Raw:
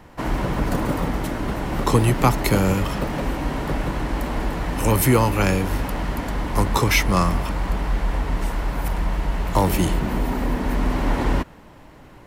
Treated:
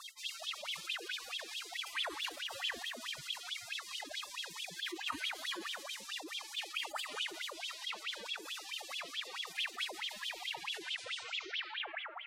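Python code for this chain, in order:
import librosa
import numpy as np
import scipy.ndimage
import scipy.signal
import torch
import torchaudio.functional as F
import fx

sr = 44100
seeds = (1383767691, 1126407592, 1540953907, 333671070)

y = fx.tape_stop_end(x, sr, length_s=1.85)
y = fx.highpass(y, sr, hz=250.0, slope=6)
y = fx.doubler(y, sr, ms=43.0, db=-7.5)
y = fx.spec_gate(y, sr, threshold_db=-30, keep='weak')
y = fx.echo_filtered(y, sr, ms=177, feedback_pct=38, hz=2400.0, wet_db=-13)
y = fx.pitch_keep_formants(y, sr, semitones=8.0)
y = fx.wah_lfo(y, sr, hz=4.6, low_hz=320.0, high_hz=3400.0, q=18.0)
y = fx.env_flatten(y, sr, amount_pct=70)
y = F.gain(torch.from_numpy(y), 18.0).numpy()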